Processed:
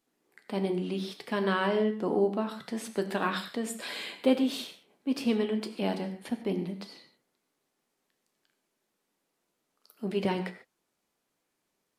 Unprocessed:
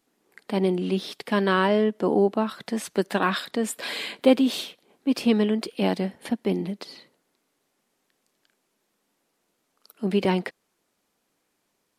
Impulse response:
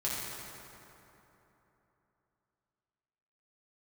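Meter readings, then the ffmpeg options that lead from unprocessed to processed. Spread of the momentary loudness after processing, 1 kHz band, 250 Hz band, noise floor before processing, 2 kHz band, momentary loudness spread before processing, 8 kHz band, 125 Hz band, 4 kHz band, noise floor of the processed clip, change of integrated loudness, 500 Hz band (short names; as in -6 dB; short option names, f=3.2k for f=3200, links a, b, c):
11 LU, -6.5 dB, -6.5 dB, -75 dBFS, -6.0 dB, 10 LU, -6.0 dB, -6.5 dB, -6.5 dB, -81 dBFS, -6.5 dB, -6.0 dB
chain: -filter_complex "[0:a]asplit=2[a][b];[1:a]atrim=start_sample=2205,atrim=end_sample=6174,adelay=12[c];[b][c]afir=irnorm=-1:irlink=0,volume=-10.5dB[d];[a][d]amix=inputs=2:normalize=0,volume=-7dB"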